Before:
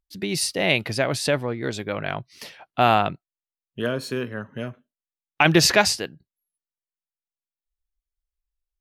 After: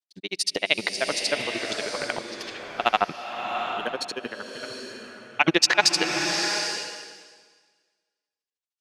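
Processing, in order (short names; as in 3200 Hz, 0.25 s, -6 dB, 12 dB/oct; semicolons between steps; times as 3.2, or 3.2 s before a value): BPF 350–6200 Hz; high shelf 3100 Hz +10 dB; transient shaper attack -2 dB, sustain +10 dB; grains 52 ms, grains 13/s, spray 11 ms, pitch spread up and down by 0 st; bloom reverb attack 0.77 s, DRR 4 dB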